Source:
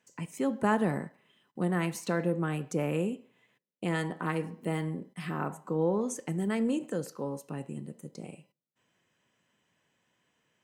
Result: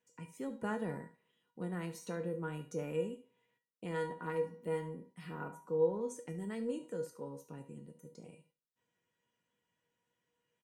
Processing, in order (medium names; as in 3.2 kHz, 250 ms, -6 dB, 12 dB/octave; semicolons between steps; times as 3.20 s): bass shelf 430 Hz +4.5 dB; feedback comb 480 Hz, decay 0.27 s, harmonics all, mix 90%; delay 72 ms -15 dB; trim +3.5 dB